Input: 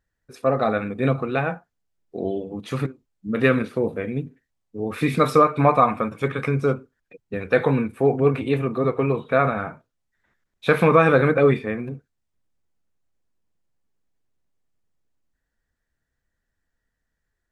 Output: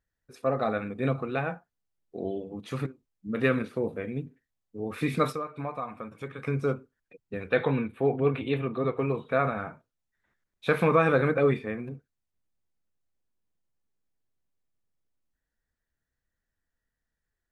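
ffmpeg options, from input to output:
-filter_complex "[0:a]asplit=3[s0][s1][s2];[s0]afade=t=out:st=5.31:d=0.02[s3];[s1]acompressor=threshold=0.02:ratio=2,afade=t=in:st=5.31:d=0.02,afade=t=out:st=6.46:d=0.02[s4];[s2]afade=t=in:st=6.46:d=0.02[s5];[s3][s4][s5]amix=inputs=3:normalize=0,asettb=1/sr,asplit=3[s6][s7][s8];[s6]atrim=end=7.494[s9];[s7]atrim=start=7.49:end=8.97,asetpts=PTS-STARTPTS,afade=t=in:d=0.004:c=qsin,afade=t=out:st=1.476:d=0.004:c=qsin,highshelf=f=4400:t=q:w=3:g=-7[s10];[s8]atrim=start=8.966[s11];[s9][s10]acrossfade=d=0.004:c1=hsin:c2=qsin[s12];[s12][s11]acrossfade=d=0.004:c1=qsin:c2=hsin,volume=0.473"

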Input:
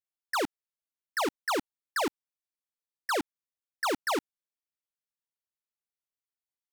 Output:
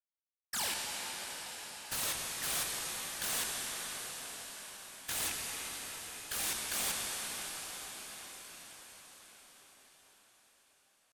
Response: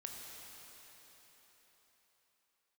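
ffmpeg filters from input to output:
-filter_complex "[0:a]highpass=f=2400:t=q:w=2.8,dynaudnorm=f=300:g=7:m=5.96,aresample=11025,asoftclip=type=hard:threshold=0.0891,aresample=44100,atempo=0.58,aeval=exprs='(mod(22.4*val(0)+1,2)-1)/22.4':c=same,agate=range=0.0224:threshold=0.0178:ratio=3:detection=peak[s0];[1:a]atrim=start_sample=2205,asetrate=24696,aresample=44100[s1];[s0][s1]afir=irnorm=-1:irlink=0,asetrate=45938,aresample=44100"

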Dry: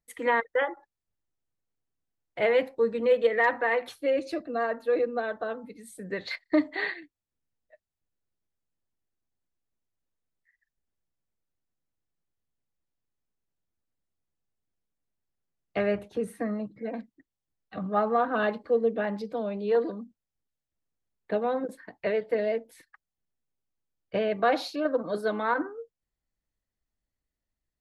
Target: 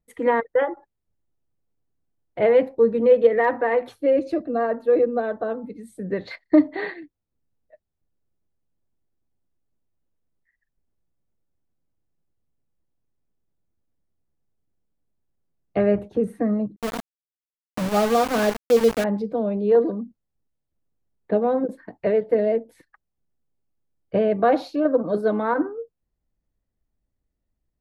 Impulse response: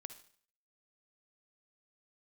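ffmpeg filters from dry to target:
-filter_complex "[0:a]tiltshelf=f=1100:g=8,asettb=1/sr,asplit=3[s0][s1][s2];[s0]atrim=end=16.764[s3];[s1]atrim=start=16.76:end=19.04,asetpts=PTS-STARTPTS,afade=t=in:d=0.004:c=qsin,afade=t=out:st=2.276:d=0.004:c=qsin,aeval=exprs='val(0)*gte(abs(val(0)),0.0562)':c=same[s4];[s2]atrim=start=19.036[s5];[s3][s4]acrossfade=d=0.004:c1=hsin:c2=qsin[s6];[s6][s5]acrossfade=d=0.004:c1=qsin:c2=hsin,volume=1.26"

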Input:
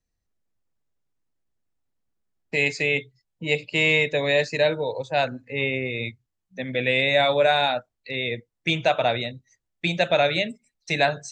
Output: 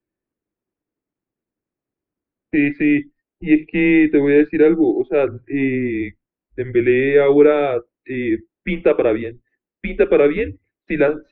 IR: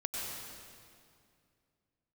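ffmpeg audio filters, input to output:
-filter_complex "[0:a]equalizer=f=460:t=o:w=1:g=14.5,asettb=1/sr,asplit=3[s0][s1][s2];[s0]atrim=end=8.734[s3];[s1]atrim=start=8.73:end=10.42,asetpts=PTS-STARTPTS,afade=t=in:d=0.004:c=qsin,afade=t=out:st=1.686:d=0.004:c=qsin,aeval=exprs='0.944*(cos(1*acos(clip(val(0)/0.944,-1,1)))-cos(1*PI/2))+0.0237*(cos(7*acos(clip(val(0)/0.944,-1,1)))-cos(7*PI/2))':c=same[s4];[s2]atrim=start=10.416[s5];[s3][s4]acrossfade=d=0.004:c1=hsin:c2=qsin[s6];[s6][s5]acrossfade=d=0.004:c1=qsin:c2=hsin,highpass=f=160:t=q:w=0.5412,highpass=f=160:t=q:w=1.307,lowpass=f=2800:t=q:w=0.5176,lowpass=f=2800:t=q:w=0.7071,lowpass=f=2800:t=q:w=1.932,afreqshift=-140,volume=0.891"

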